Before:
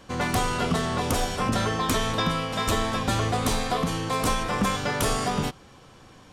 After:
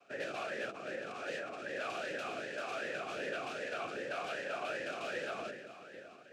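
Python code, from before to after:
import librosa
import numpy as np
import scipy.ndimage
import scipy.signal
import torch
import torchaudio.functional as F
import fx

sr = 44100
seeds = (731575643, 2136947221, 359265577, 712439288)

y = fx.room_shoebox(x, sr, seeds[0], volume_m3=2800.0, walls='mixed', distance_m=0.88)
y = fx.noise_vocoder(y, sr, seeds[1], bands=3)
y = fx.over_compress(y, sr, threshold_db=-30.0, ratio=-1.0, at=(0.69, 1.78))
y = 10.0 ** (-22.0 / 20.0) * (np.abs((y / 10.0 ** (-22.0 / 20.0) + 3.0) % 4.0 - 2.0) - 1.0)
y = fx.peak_eq(y, sr, hz=870.0, db=-6.5, octaves=1.4)
y = fx.echo_feedback(y, sr, ms=659, feedback_pct=48, wet_db=-15.0)
y = fx.vowel_sweep(y, sr, vowels='a-e', hz=2.6)
y = y * 10.0 ** (3.5 / 20.0)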